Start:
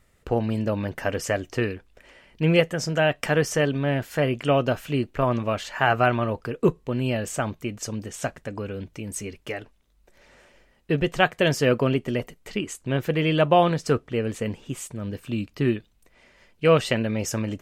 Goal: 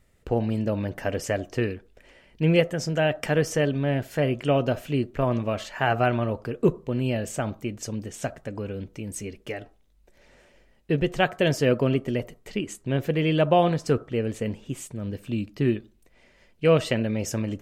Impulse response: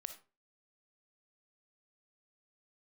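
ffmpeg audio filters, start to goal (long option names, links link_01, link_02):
-filter_complex "[0:a]asplit=2[link_01][link_02];[link_02]lowpass=frequency=1300:width=0.5412,lowpass=frequency=1300:width=1.3066[link_03];[1:a]atrim=start_sample=2205[link_04];[link_03][link_04]afir=irnorm=-1:irlink=0,volume=-3.5dB[link_05];[link_01][link_05]amix=inputs=2:normalize=0,volume=-3dB"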